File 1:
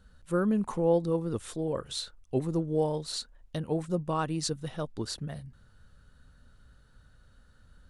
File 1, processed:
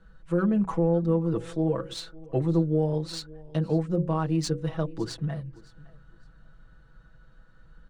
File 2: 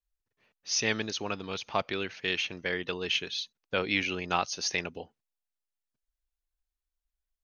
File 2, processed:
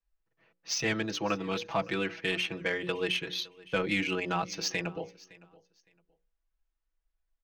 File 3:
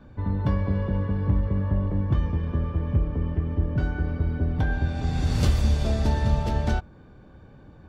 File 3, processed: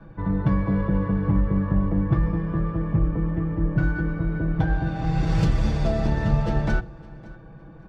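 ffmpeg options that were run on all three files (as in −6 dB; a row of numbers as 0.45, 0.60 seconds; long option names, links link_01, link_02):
-filter_complex "[0:a]equalizer=frequency=3800:width_type=o:width=0.92:gain=-4,bandreject=frequency=60:width_type=h:width=6,bandreject=frequency=120:width_type=h:width=6,bandreject=frequency=180:width_type=h:width=6,bandreject=frequency=240:width_type=h:width=6,bandreject=frequency=300:width_type=h:width=6,bandreject=frequency=360:width_type=h:width=6,bandreject=frequency=420:width_type=h:width=6,bandreject=frequency=480:width_type=h:width=6,bandreject=frequency=540:width_type=h:width=6,aecho=1:1:6.1:0.94,acrossover=split=230[link_01][link_02];[link_02]alimiter=limit=-21dB:level=0:latency=1:release=227[link_03];[link_01][link_03]amix=inputs=2:normalize=0,adynamicsmooth=sensitivity=3.5:basefreq=4000,aecho=1:1:562|1124:0.0794|0.0167,volume=2.5dB"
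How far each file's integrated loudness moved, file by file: +3.5, −0.5, +1.5 LU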